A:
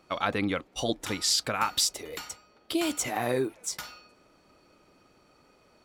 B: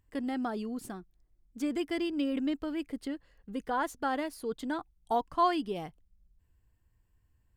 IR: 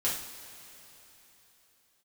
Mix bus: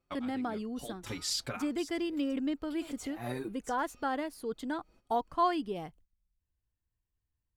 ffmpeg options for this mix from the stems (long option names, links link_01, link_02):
-filter_complex "[0:a]lowshelf=frequency=140:gain=10,asplit=2[link_01][link_02];[link_02]adelay=5.5,afreqshift=2.8[link_03];[link_01][link_03]amix=inputs=2:normalize=1,volume=-5.5dB[link_04];[1:a]adynamicequalizer=threshold=0.00794:dfrequency=1800:dqfactor=0.7:tfrequency=1800:tqfactor=0.7:attack=5:release=100:ratio=0.375:range=2:mode=cutabove:tftype=highshelf,volume=-1.5dB,asplit=2[link_05][link_06];[link_06]apad=whole_len=257973[link_07];[link_04][link_07]sidechaincompress=threshold=-53dB:ratio=3:attack=16:release=105[link_08];[link_08][link_05]amix=inputs=2:normalize=0,agate=range=-14dB:threshold=-59dB:ratio=16:detection=peak"